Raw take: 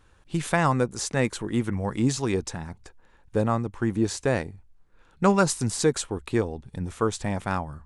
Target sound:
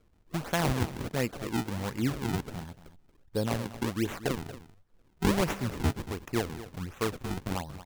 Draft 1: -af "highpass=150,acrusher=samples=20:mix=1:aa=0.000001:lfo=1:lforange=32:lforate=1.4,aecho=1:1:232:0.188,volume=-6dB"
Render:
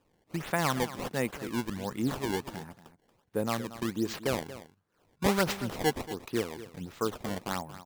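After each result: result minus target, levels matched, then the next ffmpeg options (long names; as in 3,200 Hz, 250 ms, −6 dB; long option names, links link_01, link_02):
125 Hz band −5.0 dB; sample-and-hold swept by an LFO: distortion −5 dB
-af "acrusher=samples=20:mix=1:aa=0.000001:lfo=1:lforange=32:lforate=1.4,aecho=1:1:232:0.188,volume=-6dB"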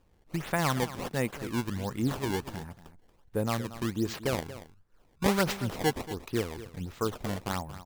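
sample-and-hold swept by an LFO: distortion −6 dB
-af "acrusher=samples=45:mix=1:aa=0.000001:lfo=1:lforange=72:lforate=1.4,aecho=1:1:232:0.188,volume=-6dB"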